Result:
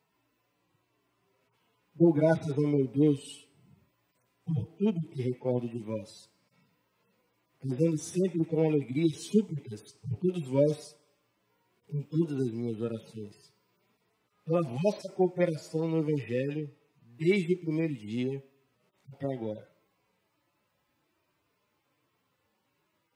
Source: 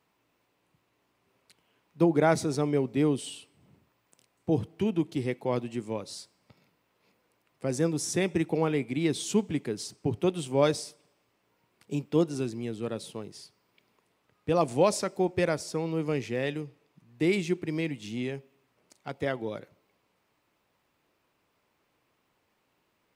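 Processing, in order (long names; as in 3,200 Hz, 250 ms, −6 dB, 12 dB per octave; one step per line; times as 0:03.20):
harmonic-percussive split with one part muted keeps harmonic
level +1.5 dB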